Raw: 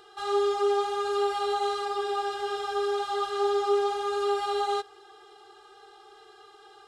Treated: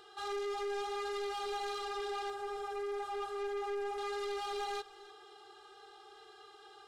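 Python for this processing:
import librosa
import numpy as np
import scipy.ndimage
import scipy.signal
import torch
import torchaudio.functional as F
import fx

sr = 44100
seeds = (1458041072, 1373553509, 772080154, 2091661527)

y = fx.peak_eq(x, sr, hz=3500.0, db=fx.steps((0.0, 2.5), (2.3, -9.0), (3.98, 2.5)), octaves=1.9)
y = 10.0 ** (-31.0 / 20.0) * np.tanh(y / 10.0 ** (-31.0 / 20.0))
y = y + 10.0 ** (-20.0 / 20.0) * np.pad(y, (int(300 * sr / 1000.0), 0))[:len(y)]
y = y * librosa.db_to_amplitude(-4.5)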